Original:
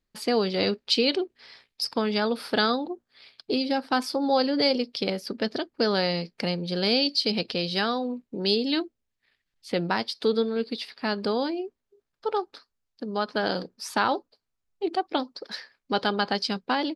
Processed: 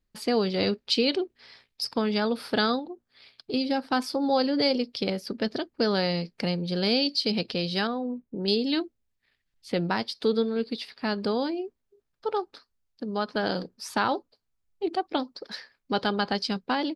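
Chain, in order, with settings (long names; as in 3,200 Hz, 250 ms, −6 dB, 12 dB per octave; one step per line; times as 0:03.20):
low-shelf EQ 180 Hz +7 dB
0:02.79–0:03.54: downward compressor 2.5 to 1, threshold −35 dBFS, peak gain reduction 9 dB
0:07.87–0:08.48: head-to-tape spacing loss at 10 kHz 37 dB
level −2 dB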